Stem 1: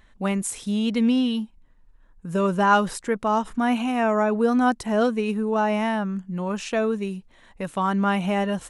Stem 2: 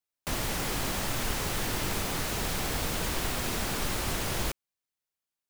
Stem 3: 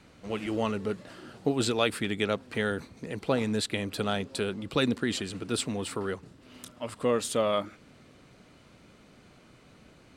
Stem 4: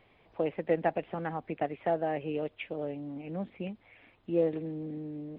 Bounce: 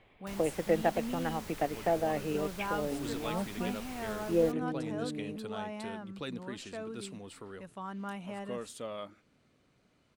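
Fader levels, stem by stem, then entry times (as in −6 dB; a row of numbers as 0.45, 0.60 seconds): −18.0, −15.5, −14.0, 0.0 decibels; 0.00, 0.00, 1.45, 0.00 seconds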